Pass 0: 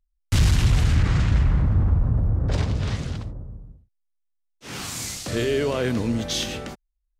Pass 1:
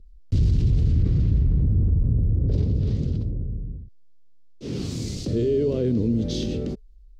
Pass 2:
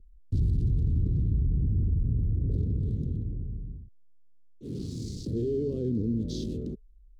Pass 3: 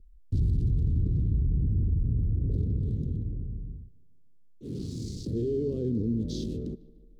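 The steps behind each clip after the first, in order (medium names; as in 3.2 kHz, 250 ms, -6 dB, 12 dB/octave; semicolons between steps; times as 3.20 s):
FFT filter 430 Hz 0 dB, 810 Hz -22 dB, 1.6 kHz -25 dB, 4.6 kHz -13 dB, 11 kHz -28 dB; level flattener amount 50%; trim -2.5 dB
local Wiener filter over 9 samples; high-order bell 1.3 kHz -15 dB 2.6 oct; trim -6 dB
tape echo 150 ms, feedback 64%, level -19.5 dB, low-pass 3 kHz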